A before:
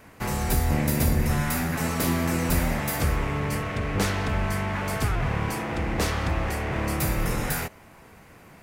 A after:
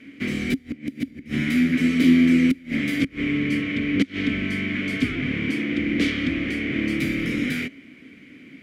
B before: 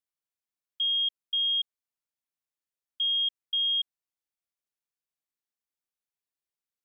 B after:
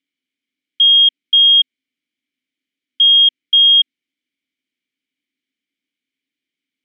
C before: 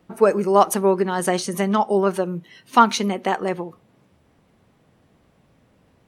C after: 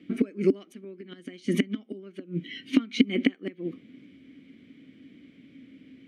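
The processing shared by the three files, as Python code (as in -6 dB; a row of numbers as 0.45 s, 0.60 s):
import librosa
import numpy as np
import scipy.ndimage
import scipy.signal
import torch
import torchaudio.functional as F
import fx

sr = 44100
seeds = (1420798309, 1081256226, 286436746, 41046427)

y = fx.gate_flip(x, sr, shuts_db=-12.0, range_db=-27)
y = fx.vowel_filter(y, sr, vowel='i')
y = librosa.util.normalize(y) * 10.0 ** (-6 / 20.0)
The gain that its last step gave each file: +17.5 dB, +27.5 dB, +19.0 dB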